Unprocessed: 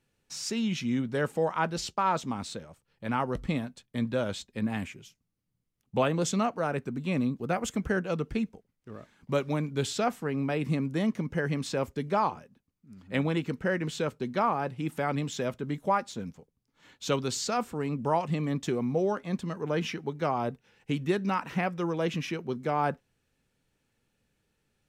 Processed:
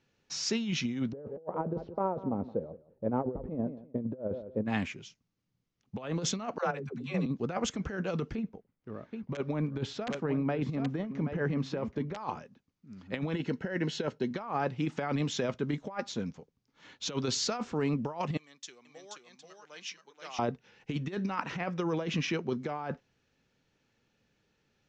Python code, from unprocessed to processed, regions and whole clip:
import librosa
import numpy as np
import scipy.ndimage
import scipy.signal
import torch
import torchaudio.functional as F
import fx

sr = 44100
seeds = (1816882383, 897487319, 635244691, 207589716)

y = fx.chain(x, sr, fx.lowpass_res(hz=510.0, q=2.2),
    fx.echo_feedback(ms=171, feedback_pct=18, wet_db=-18.5), at=(1.12, 4.66))
y = fx.chain(y, sr, fx.dispersion(late='lows', ms=102.0, hz=330.0),
    fx.level_steps(step_db=10),
    fx.notch_comb(f0_hz=310.0), at=(6.58, 7.26))
y = fx.chain(y, sr, fx.lowpass(hz=1300.0, slope=6),
    fx.overflow_wrap(gain_db=17.5),
    fx.echo_single(ms=776, db=-13.0), at=(8.35, 12.17))
y = fx.chain(y, sr, fx.notch_comb(f0_hz=1200.0),
    fx.resample_linear(factor=2), at=(13.34, 14.31))
y = fx.chain(y, sr, fx.differentiator(),
    fx.echo_single(ms=480, db=-3.0),
    fx.upward_expand(threshold_db=-55.0, expansion=1.5), at=(18.37, 20.39))
y = scipy.signal.sosfilt(scipy.signal.butter(8, 6700.0, 'lowpass', fs=sr, output='sos'), y)
y = fx.low_shelf(y, sr, hz=69.0, db=-10.0)
y = fx.over_compress(y, sr, threshold_db=-31.0, ratio=-0.5)